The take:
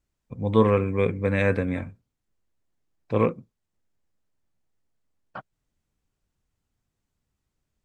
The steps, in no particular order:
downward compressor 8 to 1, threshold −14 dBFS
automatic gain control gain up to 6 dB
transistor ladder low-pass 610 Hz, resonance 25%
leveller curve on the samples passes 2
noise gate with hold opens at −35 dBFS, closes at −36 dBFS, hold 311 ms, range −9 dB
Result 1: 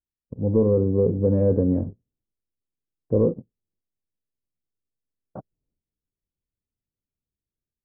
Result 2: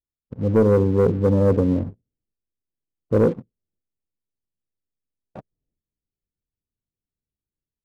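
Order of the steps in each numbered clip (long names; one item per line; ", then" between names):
automatic gain control, then noise gate with hold, then leveller curve on the samples, then transistor ladder low-pass, then downward compressor
transistor ladder low-pass, then automatic gain control, then downward compressor, then leveller curve on the samples, then noise gate with hold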